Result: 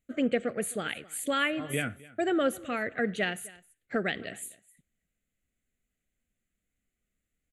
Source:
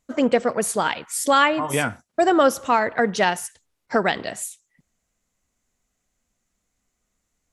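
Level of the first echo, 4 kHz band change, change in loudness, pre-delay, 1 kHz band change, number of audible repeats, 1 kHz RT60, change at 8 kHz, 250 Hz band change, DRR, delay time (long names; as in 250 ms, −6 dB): −21.5 dB, −8.5 dB, −10.0 dB, no reverb audible, −16.0 dB, 1, no reverb audible, −10.5 dB, −7.0 dB, no reverb audible, 261 ms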